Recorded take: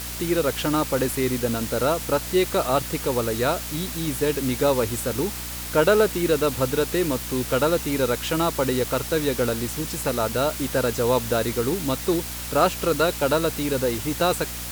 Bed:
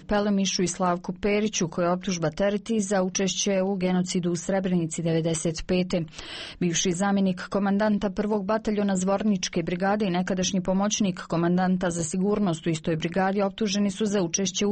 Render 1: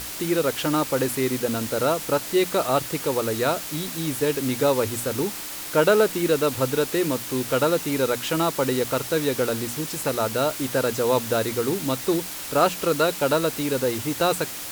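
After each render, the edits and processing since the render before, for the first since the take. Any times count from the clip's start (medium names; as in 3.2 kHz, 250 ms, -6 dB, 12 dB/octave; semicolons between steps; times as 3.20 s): hum notches 60/120/180/240 Hz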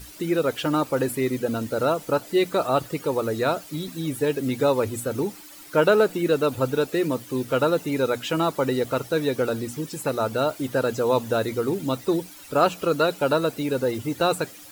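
noise reduction 14 dB, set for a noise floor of -34 dBFS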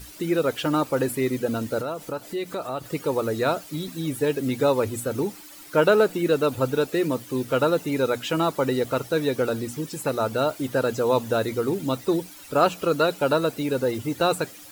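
1.81–2.86 s: compression 2:1, threshold -32 dBFS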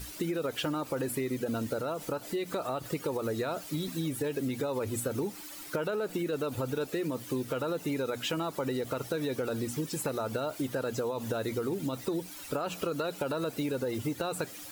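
peak limiter -18 dBFS, peak gain reduction 11.5 dB; compression, threshold -29 dBFS, peak gain reduction 7.5 dB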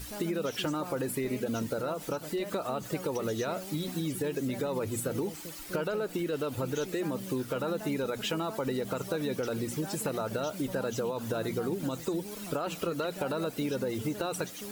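add bed -19.5 dB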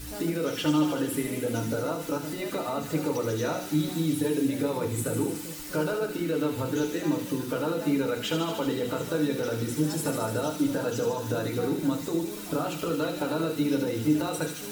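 feedback echo behind a high-pass 75 ms, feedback 81%, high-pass 2.4 kHz, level -5 dB; FDN reverb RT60 0.4 s, low-frequency decay 1.5×, high-frequency decay 0.5×, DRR 1.5 dB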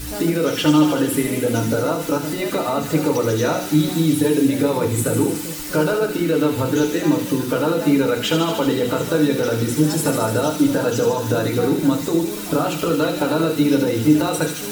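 trim +9.5 dB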